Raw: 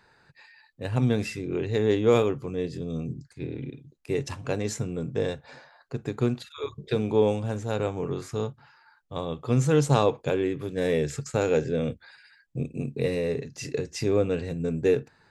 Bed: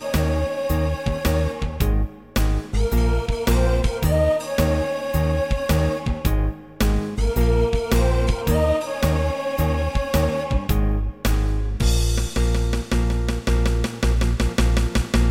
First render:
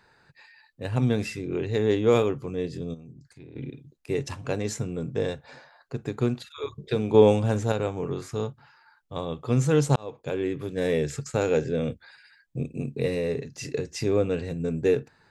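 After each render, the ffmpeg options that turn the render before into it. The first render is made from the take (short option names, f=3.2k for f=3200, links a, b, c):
-filter_complex "[0:a]asplit=3[a][b][c];[a]afade=t=out:st=2.93:d=0.02[d];[b]acompressor=threshold=-46dB:ratio=3:attack=3.2:release=140:knee=1:detection=peak,afade=t=in:st=2.93:d=0.02,afade=t=out:st=3.55:d=0.02[e];[c]afade=t=in:st=3.55:d=0.02[f];[d][e][f]amix=inputs=3:normalize=0,asplit=4[g][h][i][j];[g]atrim=end=7.142[k];[h]atrim=start=7.138:end=7.722,asetpts=PTS-STARTPTS,volume=5.5dB[l];[i]atrim=start=7.718:end=9.96,asetpts=PTS-STARTPTS,afade=t=out:st=2.238:d=0.004:c=hsin[m];[j]atrim=start=9.96,asetpts=PTS-STARTPTS,afade=t=in:d=0.57[n];[k][l]acrossfade=d=0.004:c1=hsin:c2=hsin[o];[m][n]concat=n=2:v=0:a=1[p];[o][p]acrossfade=d=0.004:c1=hsin:c2=hsin"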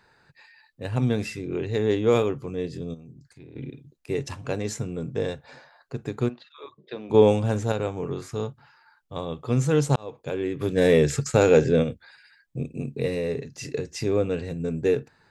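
-filter_complex "[0:a]asplit=3[a][b][c];[a]afade=t=out:st=6.28:d=0.02[d];[b]highpass=410,equalizer=f=440:t=q:w=4:g=-9,equalizer=f=770:t=q:w=4:g=-5,equalizer=f=1.4k:t=q:w=4:g=-8,equalizer=f=2.3k:t=q:w=4:g=-8,equalizer=f=3.3k:t=q:w=4:g=-6,lowpass=f=3.7k:w=0.5412,lowpass=f=3.7k:w=1.3066,afade=t=in:st=6.28:d=0.02,afade=t=out:st=7.09:d=0.02[e];[c]afade=t=in:st=7.09:d=0.02[f];[d][e][f]amix=inputs=3:normalize=0,asplit=3[g][h][i];[g]afade=t=out:st=10.6:d=0.02[j];[h]acontrast=85,afade=t=in:st=10.6:d=0.02,afade=t=out:st=11.82:d=0.02[k];[i]afade=t=in:st=11.82:d=0.02[l];[j][k][l]amix=inputs=3:normalize=0"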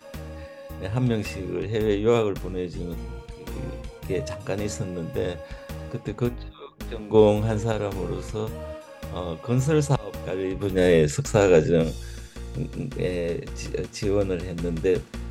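-filter_complex "[1:a]volume=-17dB[a];[0:a][a]amix=inputs=2:normalize=0"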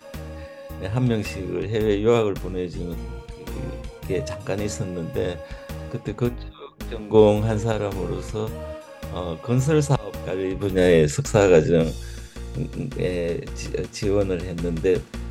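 -af "volume=2dB"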